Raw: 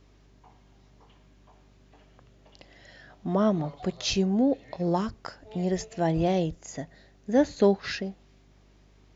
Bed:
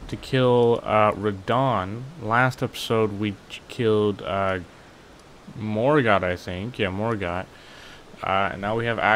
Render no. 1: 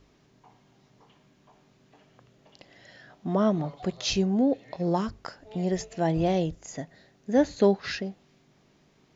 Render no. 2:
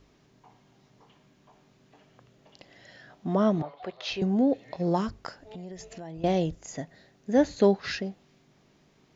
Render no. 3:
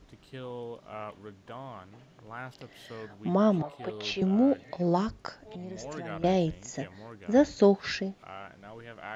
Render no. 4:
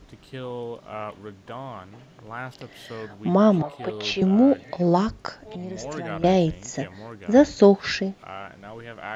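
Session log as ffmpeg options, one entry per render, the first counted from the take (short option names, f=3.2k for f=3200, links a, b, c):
-af "bandreject=f=50:t=h:w=4,bandreject=f=100:t=h:w=4"
-filter_complex "[0:a]asettb=1/sr,asplit=3[a][b][c];[a]atrim=end=3.624[d];[b]atrim=start=3.62:end=4.22,asetpts=PTS-STARTPTS,afade=t=in:d=0.004:c=qsin,afade=t=out:st=0.596:d=0.004:c=qsin,acrossover=split=400 4000:gain=0.141 1 0.0708[e][f][g];[e][f][g]amix=inputs=3:normalize=0[h];[c]atrim=start=4.216[i];[d][h]acrossfade=d=0.004:c1=hsin:c2=qsin[j];[j][i]acrossfade=d=0.004:c1=qsin:c2=hsin,asettb=1/sr,asplit=3[k][l][m];[k]atrim=end=5.424[n];[l]atrim=start=5.42:end=6.24,asetpts=PTS-STARTPTS,afade=t=in:d=0.004:c=qsin,afade=t=out:st=0.816:d=0.004:c=qsin,acompressor=threshold=-38dB:ratio=8:attack=3.2:release=140:knee=1:detection=peak[o];[m]atrim=start=6.236[p];[n][o]acrossfade=d=0.004:c1=hsin:c2=qsin[q];[q][p]acrossfade=d=0.004:c1=qsin:c2=hsin"
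-filter_complex "[1:a]volume=-21.5dB[a];[0:a][a]amix=inputs=2:normalize=0"
-af "volume=6.5dB"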